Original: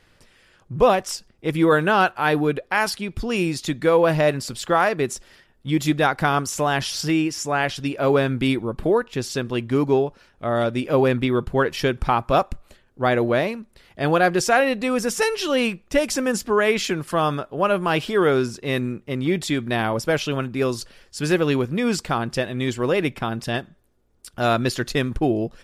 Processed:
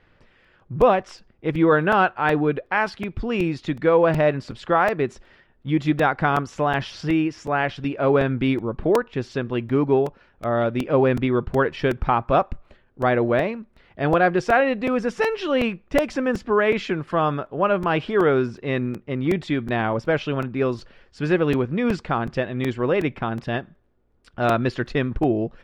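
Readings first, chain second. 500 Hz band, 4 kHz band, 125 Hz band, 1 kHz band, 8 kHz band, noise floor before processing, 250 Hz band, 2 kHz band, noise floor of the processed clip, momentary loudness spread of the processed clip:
0.0 dB, −7.0 dB, 0.0 dB, 0.0 dB, below −15 dB, −58 dBFS, 0.0 dB, −1.0 dB, −59 dBFS, 8 LU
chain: low-pass filter 2,500 Hz 12 dB per octave
regular buffer underruns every 0.37 s, samples 128, repeat, from 0:00.44

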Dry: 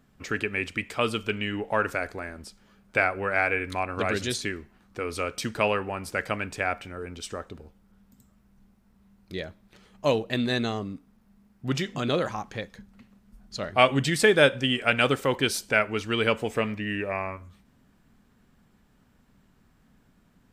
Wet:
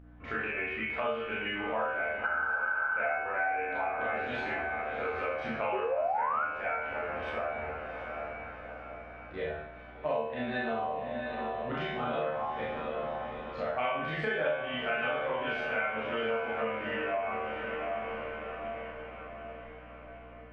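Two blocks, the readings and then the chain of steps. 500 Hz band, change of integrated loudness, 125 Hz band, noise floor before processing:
−5.0 dB, −6.5 dB, −12.5 dB, −63 dBFS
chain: feedback delay with all-pass diffusion 748 ms, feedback 53%, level −10.5 dB
four-comb reverb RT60 0.48 s, combs from 25 ms, DRR −7.5 dB
mains hum 60 Hz, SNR 19 dB
head-to-tape spacing loss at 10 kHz 41 dB
sound drawn into the spectrogram rise, 0:05.72–0:06.45, 360–1,500 Hz −16 dBFS
tuned comb filter 76 Hz, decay 0.53 s, harmonics all, mix 90%
healed spectral selection 0:02.27–0:03.07, 810–1,700 Hz after
flat-topped bell 1,300 Hz +11.5 dB 3 octaves
downward compressor 4 to 1, threshold −31 dBFS, peak gain reduction 18 dB

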